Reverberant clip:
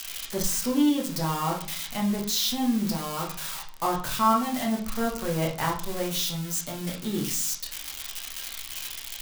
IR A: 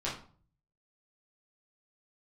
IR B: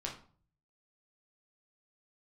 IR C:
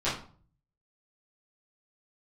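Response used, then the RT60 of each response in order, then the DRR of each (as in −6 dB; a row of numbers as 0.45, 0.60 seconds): B; 0.45, 0.45, 0.45 seconds; −7.0, −1.5, −12.0 decibels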